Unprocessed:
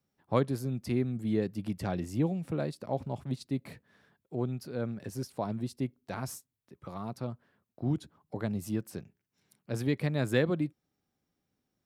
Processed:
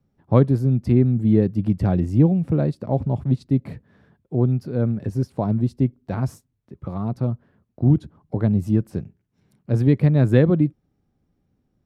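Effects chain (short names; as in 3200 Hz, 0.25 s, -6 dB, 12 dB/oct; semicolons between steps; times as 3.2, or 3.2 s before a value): tilt -3.5 dB/oct; gain +5.5 dB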